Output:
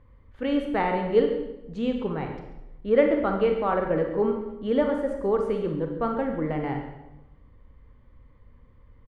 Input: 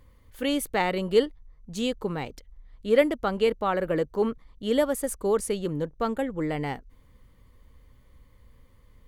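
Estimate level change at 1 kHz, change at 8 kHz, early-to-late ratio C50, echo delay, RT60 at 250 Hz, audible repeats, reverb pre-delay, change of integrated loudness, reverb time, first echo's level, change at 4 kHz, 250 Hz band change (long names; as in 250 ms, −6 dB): +1.5 dB, below −25 dB, 5.0 dB, 139 ms, 1.1 s, 1, 30 ms, +1.0 dB, 0.95 s, −15.0 dB, −8.0 dB, +2.0 dB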